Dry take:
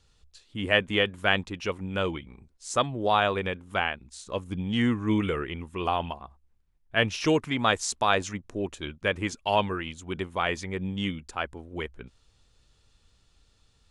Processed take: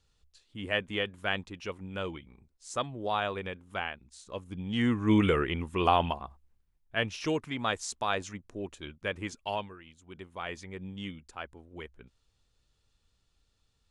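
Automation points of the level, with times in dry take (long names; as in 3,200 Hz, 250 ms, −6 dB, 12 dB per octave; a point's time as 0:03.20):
0:04.53 −7.5 dB
0:05.24 +3 dB
0:06.16 +3 dB
0:07.08 −7 dB
0:09.49 −7 dB
0:09.76 −18.5 dB
0:10.55 −9.5 dB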